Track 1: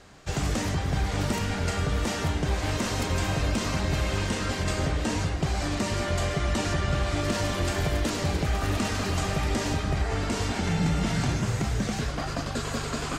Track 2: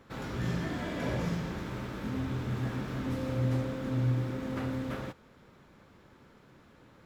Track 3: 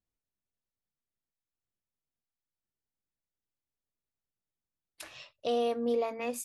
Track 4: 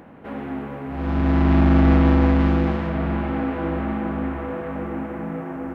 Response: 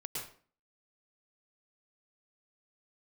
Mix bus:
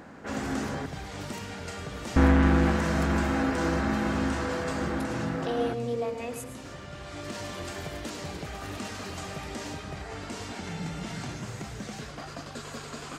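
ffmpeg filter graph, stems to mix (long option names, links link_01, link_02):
-filter_complex "[0:a]highpass=frequency=160:poles=1,volume=-8.5dB,asplit=2[link_01][link_02];[link_02]volume=-15dB[link_03];[1:a]adelay=1750,volume=-10.5dB[link_04];[2:a]volume=-4.5dB,asplit=3[link_05][link_06][link_07];[link_06]volume=-5.5dB[link_08];[3:a]equalizer=frequency=1600:width_type=o:width=0.7:gain=7,volume=-3dB,asplit=3[link_09][link_10][link_11];[link_09]atrim=end=0.86,asetpts=PTS-STARTPTS,afade=type=out:start_time=0.856:duration=0.004:curve=hsin[link_12];[link_10]atrim=start=0.86:end=2.16,asetpts=PTS-STARTPTS,volume=0[link_13];[link_11]atrim=start=2.16,asetpts=PTS-STARTPTS,afade=type=in:duration=0.004:curve=hsin[link_14];[link_12][link_13][link_14]concat=n=3:v=0:a=1[link_15];[link_07]apad=whole_len=581563[link_16];[link_01][link_16]sidechaincompress=threshold=-47dB:ratio=8:attack=8.5:release=1040[link_17];[4:a]atrim=start_sample=2205[link_18];[link_03][link_08]amix=inputs=2:normalize=0[link_19];[link_19][link_18]afir=irnorm=-1:irlink=0[link_20];[link_17][link_04][link_05][link_15][link_20]amix=inputs=5:normalize=0"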